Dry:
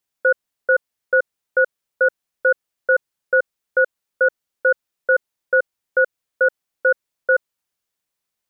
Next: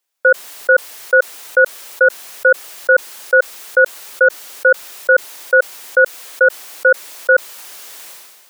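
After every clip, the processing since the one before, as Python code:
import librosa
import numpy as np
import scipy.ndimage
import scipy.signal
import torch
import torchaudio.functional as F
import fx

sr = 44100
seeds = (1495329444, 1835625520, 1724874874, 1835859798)

y = scipy.signal.sosfilt(scipy.signal.butter(2, 410.0, 'highpass', fs=sr, output='sos'), x)
y = fx.sustainer(y, sr, db_per_s=36.0)
y = F.gain(torch.from_numpy(y), 6.0).numpy()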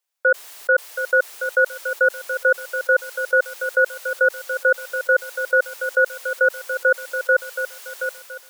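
y = scipy.signal.sosfilt(scipy.signal.butter(2, 360.0, 'highpass', fs=sr, output='sos'), x)
y = fx.echo_feedback(y, sr, ms=725, feedback_pct=31, wet_db=-9.0)
y = F.gain(torch.from_numpy(y), -5.5).numpy()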